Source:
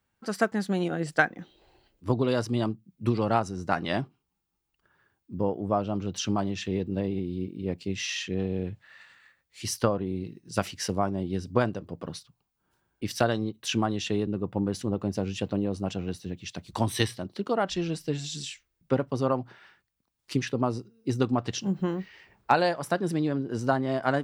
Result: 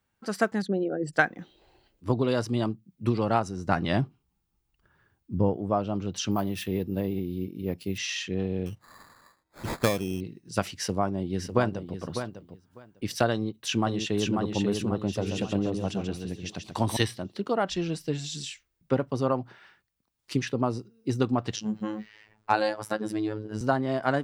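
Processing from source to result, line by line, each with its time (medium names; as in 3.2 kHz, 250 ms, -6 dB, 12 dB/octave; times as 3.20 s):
0.62–1.14 s: resonances exaggerated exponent 2
3.67–5.57 s: bass shelf 160 Hz +12 dB
6.31–7.98 s: careless resampling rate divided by 3×, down none, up hold
8.66–10.21 s: sample-rate reducer 2.9 kHz
10.78–11.97 s: echo throw 600 ms, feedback 15%, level -9 dB
13.32–14.37 s: echo throw 540 ms, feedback 45%, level -3.5 dB
15.02–16.97 s: delay 136 ms -6 dB
21.56–23.61 s: robot voice 107 Hz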